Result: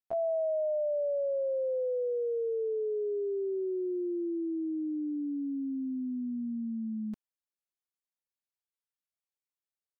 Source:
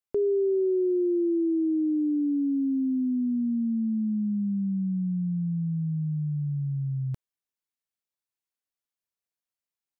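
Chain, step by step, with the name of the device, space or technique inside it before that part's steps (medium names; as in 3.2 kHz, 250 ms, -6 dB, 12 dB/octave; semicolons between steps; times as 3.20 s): chipmunk voice (pitch shift +8.5 st); trim -6 dB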